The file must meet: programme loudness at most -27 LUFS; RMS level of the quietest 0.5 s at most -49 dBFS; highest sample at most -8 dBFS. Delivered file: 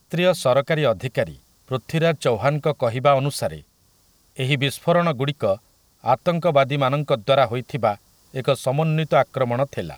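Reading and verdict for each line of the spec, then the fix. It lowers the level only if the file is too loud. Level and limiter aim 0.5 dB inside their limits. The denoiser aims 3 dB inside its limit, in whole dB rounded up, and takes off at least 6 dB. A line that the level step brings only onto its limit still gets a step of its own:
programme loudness -21.5 LUFS: fail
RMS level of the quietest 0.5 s -59 dBFS: OK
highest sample -3.5 dBFS: fail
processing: gain -6 dB

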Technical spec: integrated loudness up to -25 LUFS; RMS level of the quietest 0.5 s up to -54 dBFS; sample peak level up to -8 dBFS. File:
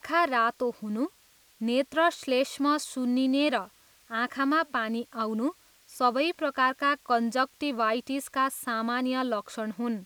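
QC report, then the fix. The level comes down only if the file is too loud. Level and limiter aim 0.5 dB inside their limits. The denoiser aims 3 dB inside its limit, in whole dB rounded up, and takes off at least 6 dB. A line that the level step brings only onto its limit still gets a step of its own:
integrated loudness -28.0 LUFS: OK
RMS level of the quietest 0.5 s -61 dBFS: OK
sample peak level -11.0 dBFS: OK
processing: none

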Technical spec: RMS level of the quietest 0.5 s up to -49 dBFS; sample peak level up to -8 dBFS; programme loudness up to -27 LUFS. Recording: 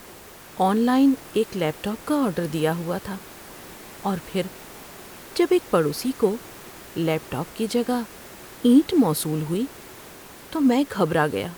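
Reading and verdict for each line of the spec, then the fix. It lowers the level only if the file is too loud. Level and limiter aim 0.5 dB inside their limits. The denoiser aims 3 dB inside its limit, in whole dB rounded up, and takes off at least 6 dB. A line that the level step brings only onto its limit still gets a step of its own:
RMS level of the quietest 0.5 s -44 dBFS: fail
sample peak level -7.0 dBFS: fail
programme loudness -23.5 LUFS: fail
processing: denoiser 6 dB, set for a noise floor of -44 dBFS; gain -4 dB

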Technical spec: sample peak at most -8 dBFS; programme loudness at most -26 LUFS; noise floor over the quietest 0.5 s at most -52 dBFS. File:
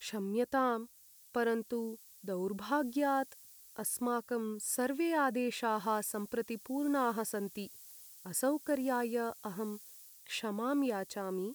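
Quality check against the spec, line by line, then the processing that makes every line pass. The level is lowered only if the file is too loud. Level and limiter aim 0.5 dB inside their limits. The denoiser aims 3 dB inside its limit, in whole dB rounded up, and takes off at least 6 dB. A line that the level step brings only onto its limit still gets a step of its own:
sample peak -20.0 dBFS: OK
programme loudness -35.0 LUFS: OK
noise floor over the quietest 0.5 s -59 dBFS: OK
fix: none

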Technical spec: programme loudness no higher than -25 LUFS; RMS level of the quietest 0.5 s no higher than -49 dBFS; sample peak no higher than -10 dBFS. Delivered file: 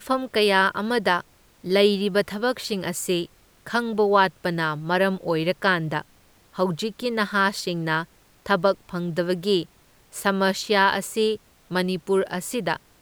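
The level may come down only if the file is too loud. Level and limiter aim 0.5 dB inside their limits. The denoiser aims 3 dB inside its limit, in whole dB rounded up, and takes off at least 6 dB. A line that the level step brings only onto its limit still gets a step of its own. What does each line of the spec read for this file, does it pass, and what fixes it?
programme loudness -23.5 LUFS: fail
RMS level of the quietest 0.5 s -56 dBFS: OK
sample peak -5.5 dBFS: fail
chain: gain -2 dB; limiter -10.5 dBFS

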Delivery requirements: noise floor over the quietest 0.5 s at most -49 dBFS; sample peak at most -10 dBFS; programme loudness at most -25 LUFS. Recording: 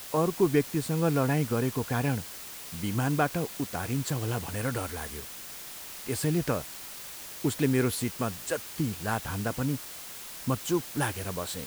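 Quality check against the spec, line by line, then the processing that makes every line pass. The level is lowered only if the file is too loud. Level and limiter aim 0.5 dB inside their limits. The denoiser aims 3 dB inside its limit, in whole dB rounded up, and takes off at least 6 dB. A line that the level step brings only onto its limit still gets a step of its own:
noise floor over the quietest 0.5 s -42 dBFS: fail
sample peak -12.0 dBFS: OK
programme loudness -30.5 LUFS: OK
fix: denoiser 10 dB, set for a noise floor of -42 dBFS

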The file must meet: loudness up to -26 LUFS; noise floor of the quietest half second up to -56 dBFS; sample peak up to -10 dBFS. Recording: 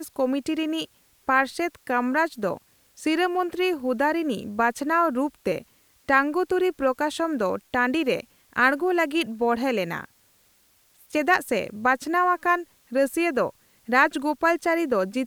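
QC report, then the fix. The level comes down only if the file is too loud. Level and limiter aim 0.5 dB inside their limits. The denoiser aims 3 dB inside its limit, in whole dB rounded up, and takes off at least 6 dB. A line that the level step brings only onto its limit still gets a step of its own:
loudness -24.0 LUFS: fail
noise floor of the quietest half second -62 dBFS: OK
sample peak -5.5 dBFS: fail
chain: gain -2.5 dB; limiter -10.5 dBFS

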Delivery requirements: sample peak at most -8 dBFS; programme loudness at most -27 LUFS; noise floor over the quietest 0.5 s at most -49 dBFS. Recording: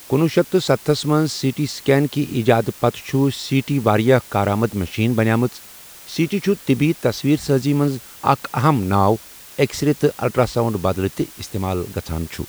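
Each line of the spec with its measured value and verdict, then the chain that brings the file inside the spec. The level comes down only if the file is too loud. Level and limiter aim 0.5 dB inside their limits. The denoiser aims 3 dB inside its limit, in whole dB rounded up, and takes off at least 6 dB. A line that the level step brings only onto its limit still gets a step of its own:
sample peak -2.0 dBFS: fail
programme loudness -19.5 LUFS: fail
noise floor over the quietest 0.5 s -41 dBFS: fail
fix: denoiser 6 dB, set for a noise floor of -41 dBFS; gain -8 dB

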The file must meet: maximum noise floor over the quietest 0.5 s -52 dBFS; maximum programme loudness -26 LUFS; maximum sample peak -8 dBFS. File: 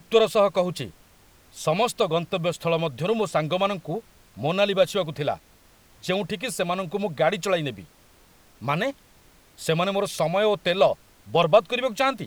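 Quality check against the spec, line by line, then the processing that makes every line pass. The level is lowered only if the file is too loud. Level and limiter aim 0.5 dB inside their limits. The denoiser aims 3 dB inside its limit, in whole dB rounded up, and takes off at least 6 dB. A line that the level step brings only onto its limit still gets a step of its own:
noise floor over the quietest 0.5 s -56 dBFS: OK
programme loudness -24.5 LUFS: fail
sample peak -5.0 dBFS: fail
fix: gain -2 dB; limiter -8.5 dBFS

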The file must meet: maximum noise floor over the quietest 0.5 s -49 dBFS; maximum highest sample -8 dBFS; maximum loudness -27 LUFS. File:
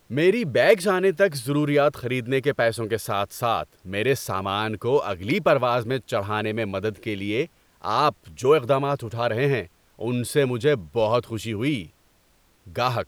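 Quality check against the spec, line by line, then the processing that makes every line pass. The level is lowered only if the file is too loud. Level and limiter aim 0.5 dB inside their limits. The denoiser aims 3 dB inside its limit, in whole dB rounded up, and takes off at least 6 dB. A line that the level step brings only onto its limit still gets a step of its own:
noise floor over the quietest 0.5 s -61 dBFS: OK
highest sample -3.5 dBFS: fail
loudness -23.5 LUFS: fail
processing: gain -4 dB; limiter -8.5 dBFS

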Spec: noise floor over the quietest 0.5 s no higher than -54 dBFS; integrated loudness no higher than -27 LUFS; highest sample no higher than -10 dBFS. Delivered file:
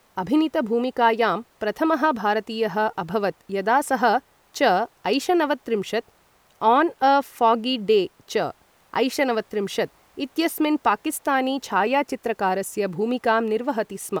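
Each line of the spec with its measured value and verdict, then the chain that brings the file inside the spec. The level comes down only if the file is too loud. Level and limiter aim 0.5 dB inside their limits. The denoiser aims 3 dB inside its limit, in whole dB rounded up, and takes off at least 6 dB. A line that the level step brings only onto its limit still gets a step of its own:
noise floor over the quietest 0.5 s -59 dBFS: OK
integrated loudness -22.5 LUFS: fail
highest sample -6.0 dBFS: fail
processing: gain -5 dB

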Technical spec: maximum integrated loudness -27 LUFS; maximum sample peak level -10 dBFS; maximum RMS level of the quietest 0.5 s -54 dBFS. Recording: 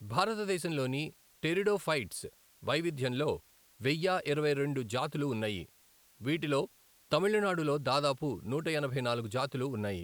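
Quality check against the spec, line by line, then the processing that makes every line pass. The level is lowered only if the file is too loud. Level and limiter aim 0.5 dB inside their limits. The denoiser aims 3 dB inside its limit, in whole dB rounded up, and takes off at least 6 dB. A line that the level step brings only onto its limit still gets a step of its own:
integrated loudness -33.0 LUFS: OK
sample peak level -14.5 dBFS: OK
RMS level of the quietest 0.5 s -64 dBFS: OK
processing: none

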